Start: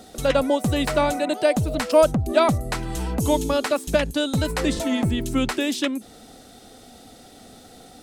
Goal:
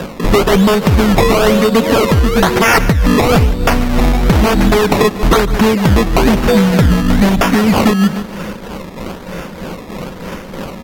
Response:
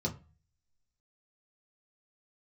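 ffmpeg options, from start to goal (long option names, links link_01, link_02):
-af "aecho=1:1:3.2:0.41,acrusher=samples=15:mix=1:aa=0.000001:lfo=1:lforange=15:lforate=1.4,aeval=exprs='0.15*(abs(mod(val(0)/0.15+3,4)-2)-1)':channel_layout=same,aecho=1:1:109|218|327|436:0.133|0.0667|0.0333|0.0167,asetrate=32667,aresample=44100,equalizer=frequency=9500:width_type=o:width=1.2:gain=-6.5,asoftclip=type=tanh:threshold=-12.5dB,tremolo=f=3.2:d=0.56,acompressor=threshold=-30dB:ratio=6,alimiter=level_in=23.5dB:limit=-1dB:release=50:level=0:latency=1,volume=-1dB"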